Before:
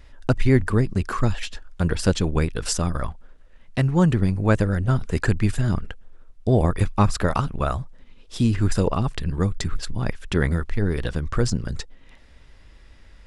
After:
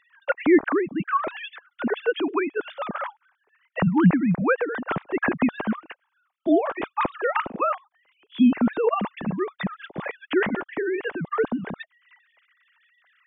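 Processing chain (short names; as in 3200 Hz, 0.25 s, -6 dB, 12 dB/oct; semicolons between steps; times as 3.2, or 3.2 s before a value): sine-wave speech; gain -3 dB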